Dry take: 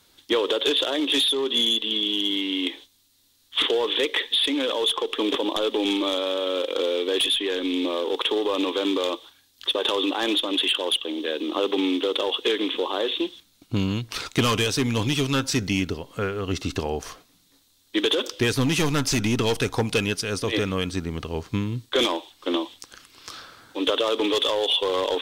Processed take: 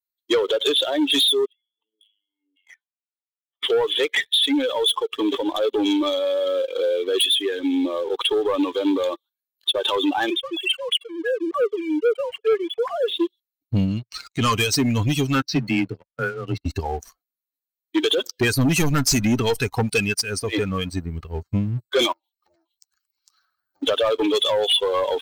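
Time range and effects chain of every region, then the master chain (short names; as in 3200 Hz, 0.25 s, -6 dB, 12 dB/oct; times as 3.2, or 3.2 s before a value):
1.45–3.63 high shelf 2400 Hz -3 dB + negative-ratio compressor -35 dBFS + LFO band-pass saw down 1.8 Hz 460–3000 Hz
10.3–13.08 sine-wave speech + HPF 380 Hz 6 dB/oct
13.85–14.53 steep low-pass 9800 Hz + transient shaper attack -5 dB, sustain -9 dB
15.42–16.66 gate -34 dBFS, range -16 dB + LPF 4700 Hz 24 dB/oct + frequency shift +22 Hz
22.12–23.83 compressor 12:1, threshold -37 dBFS + Doppler distortion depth 0.91 ms
whole clip: per-bin expansion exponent 2; high shelf 11000 Hz +6.5 dB; sample leveller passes 2; gain +3 dB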